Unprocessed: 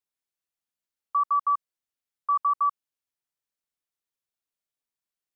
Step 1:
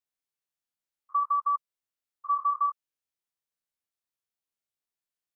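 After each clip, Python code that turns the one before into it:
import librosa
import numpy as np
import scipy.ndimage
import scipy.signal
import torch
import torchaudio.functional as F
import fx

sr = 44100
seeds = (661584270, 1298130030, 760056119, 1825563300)

y = fx.spec_steps(x, sr, hold_ms=50)
y = y * 10.0 ** (-1.5 / 20.0)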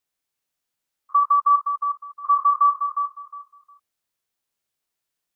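y = fx.echo_feedback(x, sr, ms=359, feedback_pct=21, wet_db=-7)
y = y * 10.0 ** (8.5 / 20.0)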